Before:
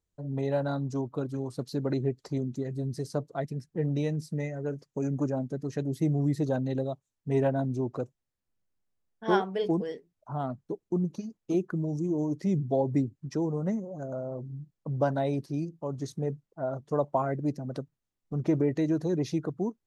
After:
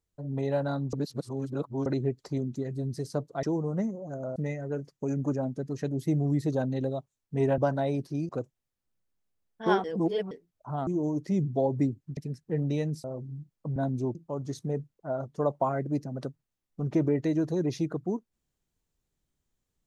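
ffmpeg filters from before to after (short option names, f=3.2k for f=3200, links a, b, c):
-filter_complex "[0:a]asplit=14[a][b][c][d][e][f][g][h][i][j][k][l][m][n];[a]atrim=end=0.932[o];[b]atrim=start=0.928:end=1.862,asetpts=PTS-STARTPTS,areverse[p];[c]atrim=start=1.858:end=3.432[q];[d]atrim=start=13.318:end=14.252[r];[e]atrim=start=4.298:end=7.522[s];[f]atrim=start=14.968:end=15.682[t];[g]atrim=start=7.908:end=9.462[u];[h]atrim=start=9.458:end=9.932,asetpts=PTS-STARTPTS,areverse[v];[i]atrim=start=9.928:end=10.492[w];[j]atrim=start=12.018:end=13.322[x];[k]atrim=start=3.428:end=4.302[y];[l]atrim=start=14.248:end=14.972[z];[m]atrim=start=7.518:end=7.912[aa];[n]atrim=start=15.678[ab];[o][p]acrossfade=d=0.004:c1=hsin:c2=hsin[ac];[ac][q]acrossfade=d=0.004:c1=hsin:c2=hsin[ad];[ad][r]acrossfade=d=0.004:c1=hsin:c2=hsin[ae];[ae][s]acrossfade=d=0.004:c1=hsin:c2=hsin[af];[af][t]acrossfade=d=0.004:c1=hsin:c2=hsin[ag];[ag][u]acrossfade=d=0.004:c1=hsin:c2=hsin[ah];[ah][v]acrossfade=d=0.004:c1=hsin:c2=hsin[ai];[ai][w]acrossfade=d=0.004:c1=hsin:c2=hsin[aj];[aj][x]acrossfade=d=0.004:c1=hsin:c2=hsin[ak];[ak][y]acrossfade=d=0.004:c1=hsin:c2=hsin[al];[al][z]acrossfade=d=0.004:c1=hsin:c2=hsin[am];[am][aa]acrossfade=d=0.004:c1=hsin:c2=hsin[an];[an][ab]acrossfade=d=0.004:c1=hsin:c2=hsin"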